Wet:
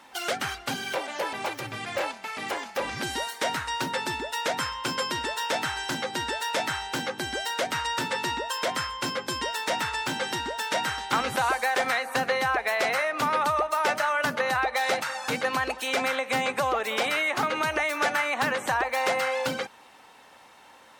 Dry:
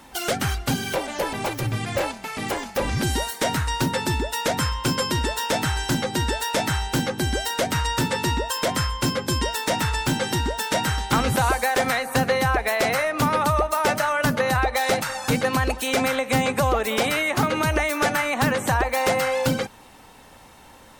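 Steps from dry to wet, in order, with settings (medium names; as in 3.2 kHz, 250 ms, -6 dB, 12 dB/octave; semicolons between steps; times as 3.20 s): high-pass 820 Hz 6 dB/octave; treble shelf 6.2 kHz -11.5 dB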